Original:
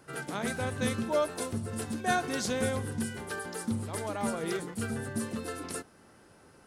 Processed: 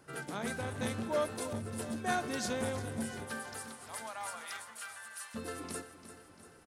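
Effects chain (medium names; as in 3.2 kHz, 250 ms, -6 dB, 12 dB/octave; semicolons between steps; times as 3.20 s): 3.25–5.34 s: high-pass 540 Hz -> 1.2 kHz 24 dB/octave; feedback delay 345 ms, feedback 56%, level -12.5 dB; transformer saturation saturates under 610 Hz; trim -3.5 dB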